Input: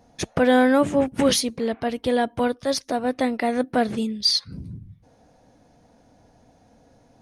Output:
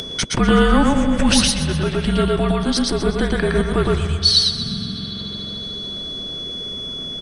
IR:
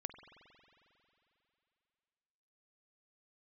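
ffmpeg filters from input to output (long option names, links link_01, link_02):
-filter_complex "[0:a]aeval=exprs='val(0)+0.00251*sin(2*PI*3700*n/s)':channel_layout=same,afreqshift=-300,asplit=2[link_01][link_02];[1:a]atrim=start_sample=2205,adelay=113[link_03];[link_02][link_03]afir=irnorm=-1:irlink=0,volume=2dB[link_04];[link_01][link_04]amix=inputs=2:normalize=0,aresample=22050,aresample=44100,aecho=1:1:125|250|375|500|625:0.224|0.119|0.0629|0.0333|0.0177,acompressor=mode=upward:threshold=-20dB:ratio=2.5,lowshelf=frequency=150:gain=-5,volume=4.5dB"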